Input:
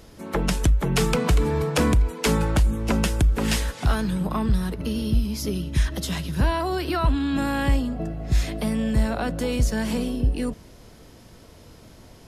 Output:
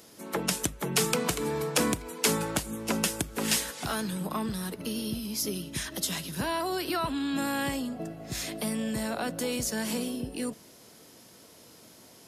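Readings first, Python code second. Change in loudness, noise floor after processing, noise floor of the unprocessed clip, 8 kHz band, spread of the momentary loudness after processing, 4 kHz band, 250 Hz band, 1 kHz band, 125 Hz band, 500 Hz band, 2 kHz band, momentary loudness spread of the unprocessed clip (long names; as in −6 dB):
−6.5 dB, −54 dBFS, −48 dBFS, +3.5 dB, 8 LU, −0.5 dB, −6.5 dB, −4.5 dB, −14.0 dB, −5.0 dB, −3.5 dB, 6 LU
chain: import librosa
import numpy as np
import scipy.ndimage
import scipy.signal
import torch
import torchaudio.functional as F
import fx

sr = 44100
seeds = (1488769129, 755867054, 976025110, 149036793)

y = scipy.signal.sosfilt(scipy.signal.butter(2, 190.0, 'highpass', fs=sr, output='sos'), x)
y = fx.high_shelf(y, sr, hz=5000.0, db=11.5)
y = y * 10.0 ** (-5.0 / 20.0)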